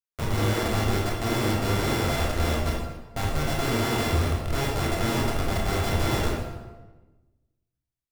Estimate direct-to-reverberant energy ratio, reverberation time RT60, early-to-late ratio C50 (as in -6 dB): -3.5 dB, 1.2 s, 1.0 dB